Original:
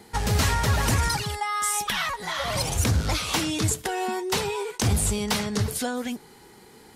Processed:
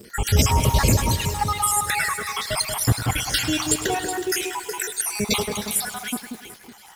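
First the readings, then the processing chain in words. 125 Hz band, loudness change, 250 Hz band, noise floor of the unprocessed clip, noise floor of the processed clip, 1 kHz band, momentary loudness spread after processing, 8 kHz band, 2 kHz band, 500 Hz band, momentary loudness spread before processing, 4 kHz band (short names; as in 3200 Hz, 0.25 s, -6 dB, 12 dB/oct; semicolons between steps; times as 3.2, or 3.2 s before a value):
+2.5 dB, +3.0 dB, +1.5 dB, -51 dBFS, -46 dBFS, +2.5 dB, 9 LU, +4.5 dB, +2.5 dB, +1.5 dB, 6 LU, +3.0 dB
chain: random spectral dropouts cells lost 67%; high shelf 9200 Hz +8 dB; crackle 200/s -42 dBFS; on a send: echo with dull and thin repeats by turns 0.185 s, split 1800 Hz, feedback 51%, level -5 dB; on the sum: lo-fi delay 0.104 s, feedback 80%, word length 7-bit, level -13.5 dB; gain +6 dB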